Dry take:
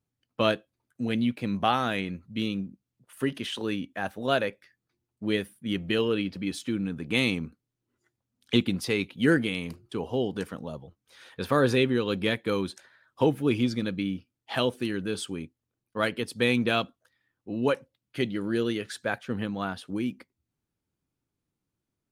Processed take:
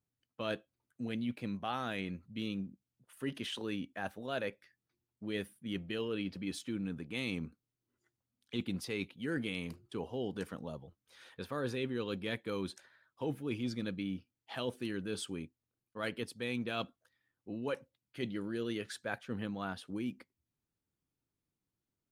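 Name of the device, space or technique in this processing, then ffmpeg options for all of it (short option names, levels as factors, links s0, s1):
compression on the reversed sound: -af "areverse,acompressor=threshold=0.0447:ratio=6,areverse,volume=0.501"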